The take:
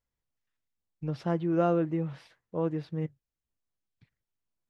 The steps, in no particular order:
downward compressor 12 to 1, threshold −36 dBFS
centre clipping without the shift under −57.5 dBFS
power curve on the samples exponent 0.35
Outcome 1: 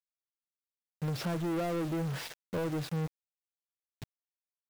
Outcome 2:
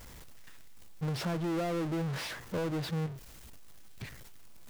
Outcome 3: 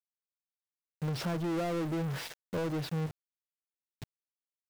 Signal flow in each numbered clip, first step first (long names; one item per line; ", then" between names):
downward compressor, then centre clipping without the shift, then power curve on the samples
downward compressor, then power curve on the samples, then centre clipping without the shift
centre clipping without the shift, then downward compressor, then power curve on the samples